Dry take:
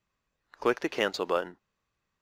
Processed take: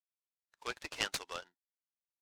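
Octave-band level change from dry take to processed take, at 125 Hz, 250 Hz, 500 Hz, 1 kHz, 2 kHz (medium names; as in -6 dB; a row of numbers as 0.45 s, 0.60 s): -9.5 dB, -19.5 dB, -19.5 dB, -12.0 dB, -7.0 dB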